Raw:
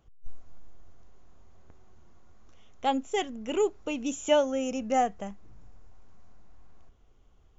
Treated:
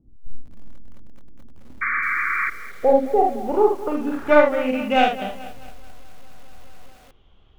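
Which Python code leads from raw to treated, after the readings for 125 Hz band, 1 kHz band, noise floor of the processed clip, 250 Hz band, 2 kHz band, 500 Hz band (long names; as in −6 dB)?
can't be measured, +9.5 dB, −51 dBFS, +7.5 dB, +18.5 dB, +10.0 dB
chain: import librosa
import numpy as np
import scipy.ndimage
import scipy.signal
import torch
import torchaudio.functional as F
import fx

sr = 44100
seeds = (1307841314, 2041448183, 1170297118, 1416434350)

y = fx.tracing_dist(x, sr, depth_ms=0.32)
y = fx.low_shelf(y, sr, hz=470.0, db=-2.0)
y = fx.room_early_taps(y, sr, ms=(31, 47, 74), db=(-16.0, -4.5, -6.5))
y = fx.filter_sweep_lowpass(y, sr, from_hz=260.0, to_hz=3300.0, start_s=1.97, end_s=5.17, q=4.1)
y = fx.high_shelf(y, sr, hz=2500.0, db=-5.5)
y = fx.spec_paint(y, sr, seeds[0], shape='noise', start_s=1.81, length_s=0.69, low_hz=1100.0, high_hz=2400.0, level_db=-29.0)
y = fx.echo_crushed(y, sr, ms=216, feedback_pct=55, bits=7, wet_db=-15)
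y = F.gain(torch.from_numpy(y), 6.0).numpy()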